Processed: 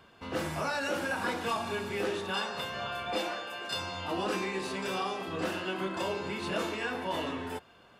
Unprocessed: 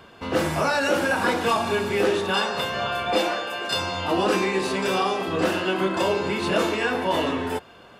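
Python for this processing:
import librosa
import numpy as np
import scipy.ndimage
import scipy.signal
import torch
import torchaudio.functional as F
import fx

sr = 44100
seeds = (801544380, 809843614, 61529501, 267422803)

y = fx.peak_eq(x, sr, hz=450.0, db=-2.5, octaves=1.5)
y = y * 10.0 ** (-9.0 / 20.0)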